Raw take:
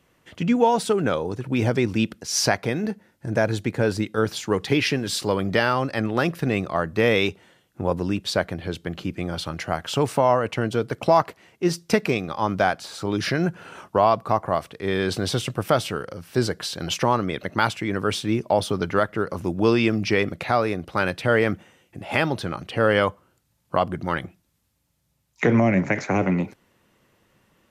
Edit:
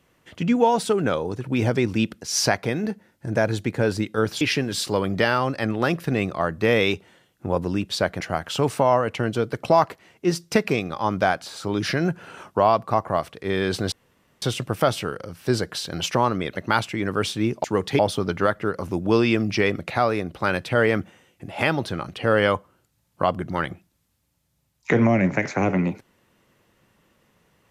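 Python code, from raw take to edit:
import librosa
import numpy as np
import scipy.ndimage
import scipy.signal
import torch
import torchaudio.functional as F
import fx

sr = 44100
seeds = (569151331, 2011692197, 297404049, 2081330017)

y = fx.edit(x, sr, fx.move(start_s=4.41, length_s=0.35, to_s=18.52),
    fx.cut(start_s=8.56, length_s=1.03),
    fx.insert_room_tone(at_s=15.3, length_s=0.5), tone=tone)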